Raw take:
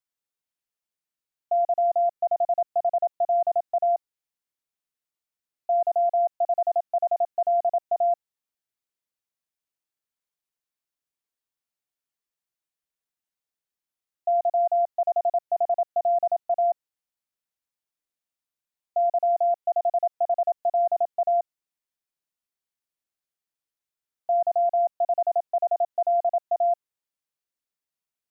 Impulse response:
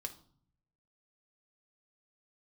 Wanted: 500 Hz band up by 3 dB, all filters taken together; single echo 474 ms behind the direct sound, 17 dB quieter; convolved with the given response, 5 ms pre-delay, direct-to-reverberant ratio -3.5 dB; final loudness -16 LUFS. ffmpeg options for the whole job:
-filter_complex "[0:a]equalizer=f=500:t=o:g=5.5,aecho=1:1:474:0.141,asplit=2[s0][s1];[1:a]atrim=start_sample=2205,adelay=5[s2];[s1][s2]afir=irnorm=-1:irlink=0,volume=2[s3];[s0][s3]amix=inputs=2:normalize=0,volume=3.16"

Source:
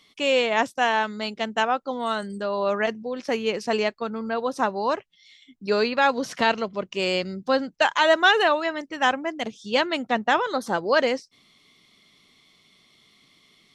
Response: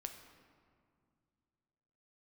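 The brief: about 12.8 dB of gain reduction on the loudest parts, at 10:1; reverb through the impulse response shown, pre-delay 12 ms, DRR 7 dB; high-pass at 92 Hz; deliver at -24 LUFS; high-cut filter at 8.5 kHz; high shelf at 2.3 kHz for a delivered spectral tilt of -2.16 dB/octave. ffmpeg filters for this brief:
-filter_complex "[0:a]highpass=92,lowpass=8500,highshelf=f=2300:g=-4,acompressor=threshold=0.0447:ratio=10,asplit=2[s0][s1];[1:a]atrim=start_sample=2205,adelay=12[s2];[s1][s2]afir=irnorm=-1:irlink=0,volume=0.631[s3];[s0][s3]amix=inputs=2:normalize=0,volume=2.37"

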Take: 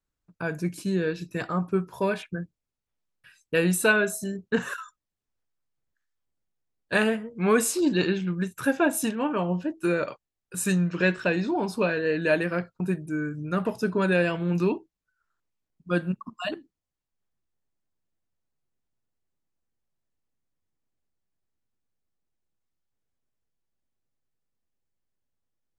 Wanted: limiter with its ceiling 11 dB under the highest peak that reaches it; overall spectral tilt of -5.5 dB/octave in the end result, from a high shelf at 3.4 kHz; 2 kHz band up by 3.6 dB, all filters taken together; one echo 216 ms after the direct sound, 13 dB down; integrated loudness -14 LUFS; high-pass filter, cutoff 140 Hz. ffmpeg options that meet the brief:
-af "highpass=140,equalizer=f=2000:t=o:g=7,highshelf=f=3400:g=-6.5,alimiter=limit=0.141:level=0:latency=1,aecho=1:1:216:0.224,volume=5.31"

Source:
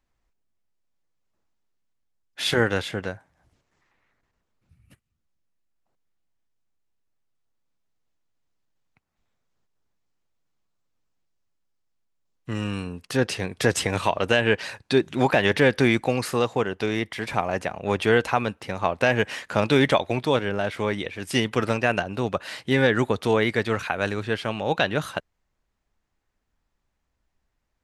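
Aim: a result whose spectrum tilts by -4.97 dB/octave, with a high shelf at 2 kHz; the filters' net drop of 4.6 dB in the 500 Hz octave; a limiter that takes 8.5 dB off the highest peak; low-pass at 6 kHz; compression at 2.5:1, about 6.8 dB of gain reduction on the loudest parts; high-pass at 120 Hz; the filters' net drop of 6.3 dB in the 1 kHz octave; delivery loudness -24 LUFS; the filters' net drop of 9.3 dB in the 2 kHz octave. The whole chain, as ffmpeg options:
-af "highpass=120,lowpass=6000,equalizer=f=500:t=o:g=-4,equalizer=f=1000:t=o:g=-4,highshelf=f=2000:g=-6,equalizer=f=2000:t=o:g=-7,acompressor=threshold=0.0447:ratio=2.5,volume=3.55,alimiter=limit=0.266:level=0:latency=1"

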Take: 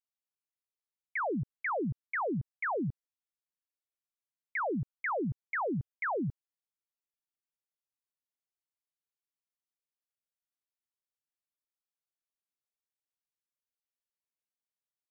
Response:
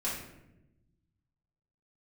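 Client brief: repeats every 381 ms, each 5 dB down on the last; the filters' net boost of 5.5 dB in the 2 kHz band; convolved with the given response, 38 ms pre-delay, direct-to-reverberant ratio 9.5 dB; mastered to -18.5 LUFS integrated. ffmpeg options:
-filter_complex "[0:a]equalizer=f=2000:t=o:g=6.5,aecho=1:1:381|762|1143|1524|1905|2286|2667:0.562|0.315|0.176|0.0988|0.0553|0.031|0.0173,asplit=2[s0][s1];[1:a]atrim=start_sample=2205,adelay=38[s2];[s1][s2]afir=irnorm=-1:irlink=0,volume=0.178[s3];[s0][s3]amix=inputs=2:normalize=0,volume=4.47"

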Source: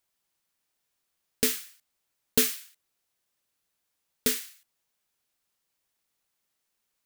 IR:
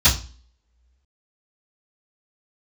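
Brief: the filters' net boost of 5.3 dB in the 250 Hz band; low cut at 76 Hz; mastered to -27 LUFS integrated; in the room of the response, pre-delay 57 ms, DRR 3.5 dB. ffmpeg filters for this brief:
-filter_complex "[0:a]highpass=76,equalizer=f=250:t=o:g=5.5,asplit=2[s0][s1];[1:a]atrim=start_sample=2205,adelay=57[s2];[s1][s2]afir=irnorm=-1:irlink=0,volume=0.075[s3];[s0][s3]amix=inputs=2:normalize=0,volume=0.841"

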